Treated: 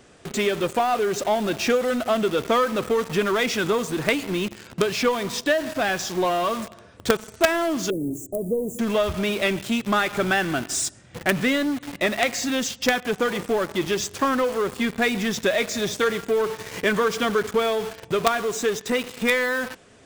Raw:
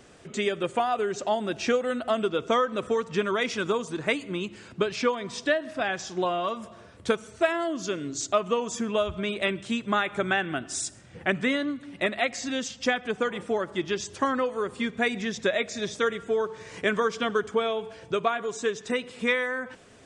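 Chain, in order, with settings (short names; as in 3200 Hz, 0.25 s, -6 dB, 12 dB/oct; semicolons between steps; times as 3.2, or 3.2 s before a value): in parallel at -6 dB: companded quantiser 2-bit; 7.9–8.79 on the sum: inverse Chebyshev band-stop 1500–3700 Hz, stop band 70 dB; gain +1 dB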